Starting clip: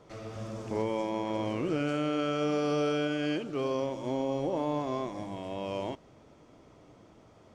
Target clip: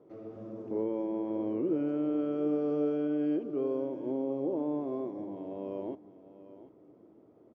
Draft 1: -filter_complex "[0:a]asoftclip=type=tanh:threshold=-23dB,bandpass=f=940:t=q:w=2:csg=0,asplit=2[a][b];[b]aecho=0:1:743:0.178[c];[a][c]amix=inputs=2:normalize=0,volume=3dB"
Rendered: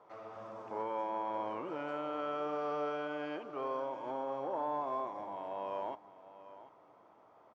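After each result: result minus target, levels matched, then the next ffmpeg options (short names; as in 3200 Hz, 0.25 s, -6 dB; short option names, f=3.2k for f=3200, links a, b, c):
1000 Hz band +16.5 dB; soft clip: distortion +13 dB
-filter_complex "[0:a]asoftclip=type=tanh:threshold=-23dB,bandpass=f=340:t=q:w=2:csg=0,asplit=2[a][b];[b]aecho=0:1:743:0.178[c];[a][c]amix=inputs=2:normalize=0,volume=3dB"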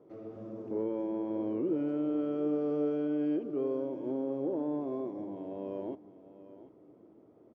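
soft clip: distortion +13 dB
-filter_complex "[0:a]asoftclip=type=tanh:threshold=-15.5dB,bandpass=f=340:t=q:w=2:csg=0,asplit=2[a][b];[b]aecho=0:1:743:0.178[c];[a][c]amix=inputs=2:normalize=0,volume=3dB"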